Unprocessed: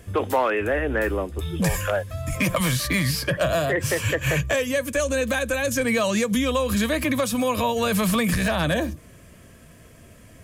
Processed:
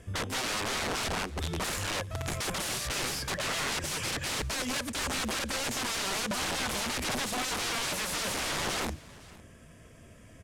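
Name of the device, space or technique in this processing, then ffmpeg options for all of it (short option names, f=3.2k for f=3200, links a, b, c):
overflowing digital effects unit: -filter_complex "[0:a]bandreject=f=4.2k:w=7.2,asettb=1/sr,asplit=3[a][b][c];[a]atrim=end=7.444[d];[b]atrim=start=7.44:end=8.49,asetpts=PTS-STARTPTS,afade=t=in:d=0.004:c=qsin,afade=t=out:st=1.046:d=0.004:c=qsin,equalizer=f=530:t=o:w=0.45:g=10.5[e];[c]atrim=start=8.486[f];[d][e]acrossfade=d=0.004:c1=hsin:c2=qsin[g];[g][f]acrossfade=d=0.004:c1=qsin:c2=hsin,aeval=exprs='(mod(12.6*val(0)+1,2)-1)/12.6':c=same,lowpass=9.4k,aecho=1:1:506:0.0794,volume=-4.5dB"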